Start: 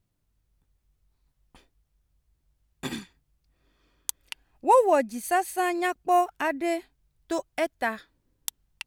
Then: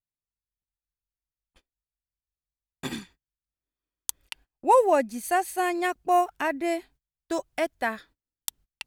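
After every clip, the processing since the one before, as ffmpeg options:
-af "agate=range=-27dB:threshold=-52dB:ratio=16:detection=peak"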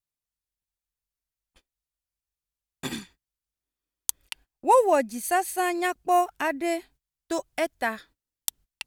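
-af "equalizer=f=12k:t=o:w=2.4:g=4"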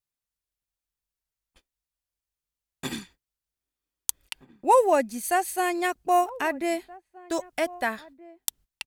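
-filter_complex "[0:a]asplit=2[a][b];[b]adelay=1574,volume=-20dB,highshelf=f=4k:g=-35.4[c];[a][c]amix=inputs=2:normalize=0"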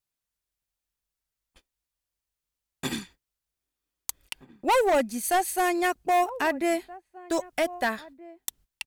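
-af "asoftclip=type=hard:threshold=-20.5dB,volume=2dB"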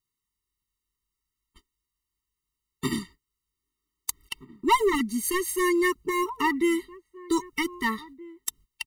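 -af "afftfilt=real='re*eq(mod(floor(b*sr/1024/450),2),0)':imag='im*eq(mod(floor(b*sr/1024/450),2),0)':win_size=1024:overlap=0.75,volume=4.5dB"

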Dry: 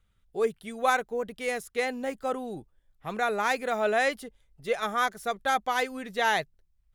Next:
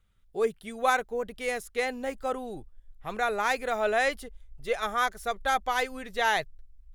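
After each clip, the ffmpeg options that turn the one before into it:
-af "asubboost=boost=9.5:cutoff=60"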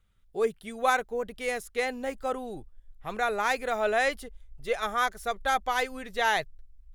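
-af anull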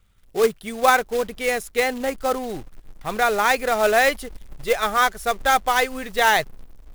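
-af "acrusher=bits=3:mode=log:mix=0:aa=0.000001,volume=8dB"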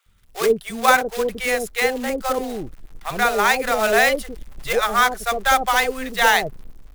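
-filter_complex "[0:a]acrossover=split=630[a][b];[a]adelay=60[c];[c][b]amix=inputs=2:normalize=0,volume=2.5dB"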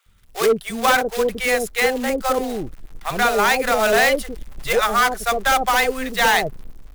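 -af "asoftclip=type=hard:threshold=-14dB,volume=2.5dB"

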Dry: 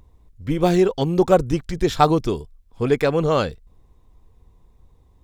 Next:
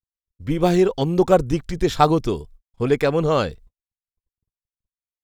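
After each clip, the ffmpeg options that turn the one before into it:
-af "agate=range=-59dB:threshold=-43dB:ratio=16:detection=peak"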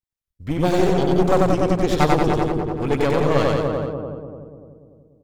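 -filter_complex "[0:a]asplit=2[a][b];[b]adelay=293,lowpass=f=810:p=1,volume=-3.5dB,asplit=2[c][d];[d]adelay=293,lowpass=f=810:p=1,volume=0.52,asplit=2[e][f];[f]adelay=293,lowpass=f=810:p=1,volume=0.52,asplit=2[g][h];[h]adelay=293,lowpass=f=810:p=1,volume=0.52,asplit=2[i][j];[j]adelay=293,lowpass=f=810:p=1,volume=0.52,asplit=2[k][l];[l]adelay=293,lowpass=f=810:p=1,volume=0.52,asplit=2[m][n];[n]adelay=293,lowpass=f=810:p=1,volume=0.52[o];[c][e][g][i][k][m][o]amix=inputs=7:normalize=0[p];[a][p]amix=inputs=2:normalize=0,aeval=exprs='clip(val(0),-1,0.0631)':c=same,asplit=2[q][r];[r]aecho=0:1:93.29|180.8:0.794|0.501[s];[q][s]amix=inputs=2:normalize=0,volume=-1dB"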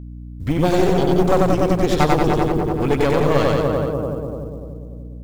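-af "acompressor=threshold=-30dB:ratio=1.5,acrusher=bits=9:mode=log:mix=0:aa=0.000001,aeval=exprs='val(0)+0.01*(sin(2*PI*60*n/s)+sin(2*PI*2*60*n/s)/2+sin(2*PI*3*60*n/s)/3+sin(2*PI*4*60*n/s)/4+sin(2*PI*5*60*n/s)/5)':c=same,volume=7.5dB"

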